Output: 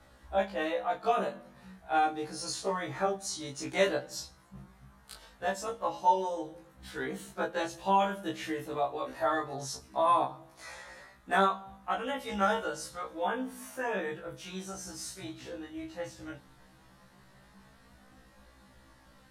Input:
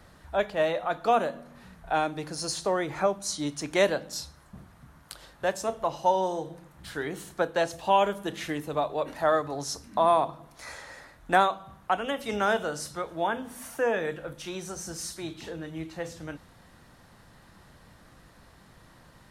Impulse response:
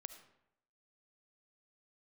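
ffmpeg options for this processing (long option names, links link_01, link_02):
-filter_complex "[0:a]flanger=delay=19:depth=4:speed=0.16,asplit=2[link_01][link_02];[1:a]atrim=start_sample=2205,asetrate=61740,aresample=44100,highshelf=frequency=6600:gain=-7[link_03];[link_02][link_03]afir=irnorm=-1:irlink=0,volume=-5dB[link_04];[link_01][link_04]amix=inputs=2:normalize=0,afftfilt=real='re*1.73*eq(mod(b,3),0)':imag='im*1.73*eq(mod(b,3),0)':win_size=2048:overlap=0.75"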